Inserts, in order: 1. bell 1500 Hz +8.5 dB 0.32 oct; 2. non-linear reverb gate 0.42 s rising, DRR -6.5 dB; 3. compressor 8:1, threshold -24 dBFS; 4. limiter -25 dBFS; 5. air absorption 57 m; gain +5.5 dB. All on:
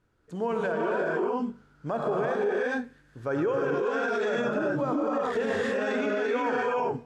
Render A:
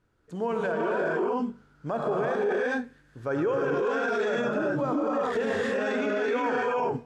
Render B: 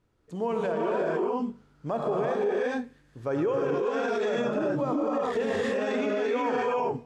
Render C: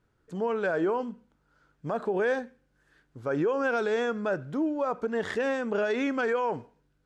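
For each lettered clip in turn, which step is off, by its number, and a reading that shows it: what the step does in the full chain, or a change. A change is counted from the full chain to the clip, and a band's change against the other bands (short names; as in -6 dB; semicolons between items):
3, mean gain reduction 4.0 dB; 1, 2 kHz band -4.5 dB; 2, momentary loudness spread change +2 LU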